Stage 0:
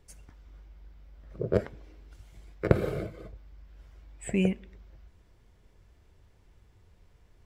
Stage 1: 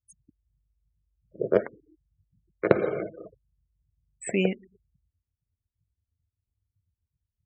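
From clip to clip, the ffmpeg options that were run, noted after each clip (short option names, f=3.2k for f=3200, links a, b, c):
-af "afftfilt=real='re*gte(hypot(re,im),0.00794)':imag='im*gte(hypot(re,im),0.00794)':win_size=1024:overlap=0.75,highpass=270,volume=5.5dB"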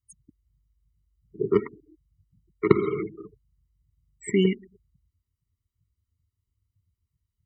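-af "afftfilt=real='re*eq(mod(floor(b*sr/1024/460),2),0)':imag='im*eq(mod(floor(b*sr/1024/460),2),0)':win_size=1024:overlap=0.75,volume=4.5dB"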